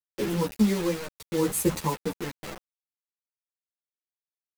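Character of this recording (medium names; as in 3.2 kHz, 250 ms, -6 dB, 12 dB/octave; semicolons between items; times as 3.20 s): tremolo triangle 0.73 Hz, depth 80%; a quantiser's noise floor 6-bit, dither none; a shimmering, thickened sound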